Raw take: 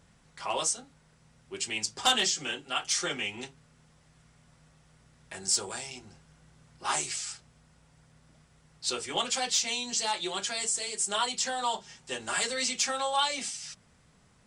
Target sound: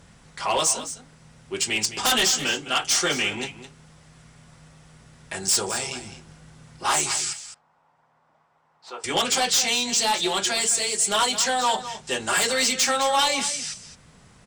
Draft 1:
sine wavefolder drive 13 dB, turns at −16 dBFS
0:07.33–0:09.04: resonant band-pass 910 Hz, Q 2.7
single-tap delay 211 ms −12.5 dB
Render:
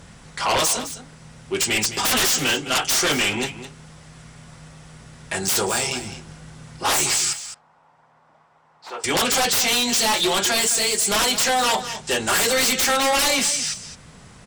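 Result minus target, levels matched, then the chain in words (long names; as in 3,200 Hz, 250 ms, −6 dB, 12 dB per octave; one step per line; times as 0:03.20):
sine wavefolder: distortion +12 dB
sine wavefolder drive 6 dB, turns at −16 dBFS
0:07.33–0:09.04: resonant band-pass 910 Hz, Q 2.7
single-tap delay 211 ms −12.5 dB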